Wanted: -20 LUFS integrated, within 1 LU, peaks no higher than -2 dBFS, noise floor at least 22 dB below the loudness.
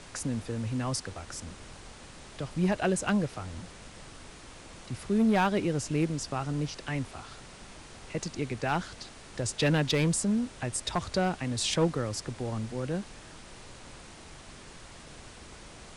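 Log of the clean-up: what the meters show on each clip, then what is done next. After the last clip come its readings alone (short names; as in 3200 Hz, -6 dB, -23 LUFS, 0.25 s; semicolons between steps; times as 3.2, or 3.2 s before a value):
clipped 0.3%; flat tops at -19.0 dBFS; noise floor -49 dBFS; noise floor target -53 dBFS; loudness -30.5 LUFS; peak -19.0 dBFS; loudness target -20.0 LUFS
-> clip repair -19 dBFS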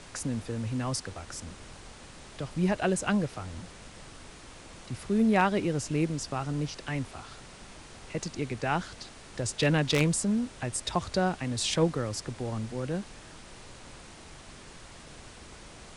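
clipped 0.0%; noise floor -49 dBFS; noise floor target -52 dBFS
-> noise print and reduce 6 dB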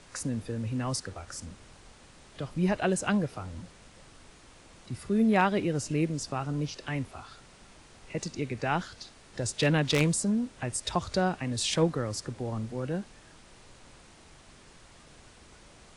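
noise floor -55 dBFS; loudness -30.0 LUFS; peak -10.0 dBFS; loudness target -20.0 LUFS
-> gain +10 dB; limiter -2 dBFS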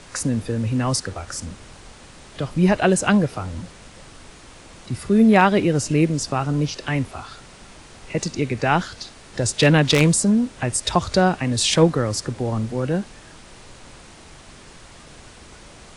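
loudness -20.0 LUFS; peak -2.0 dBFS; noise floor -45 dBFS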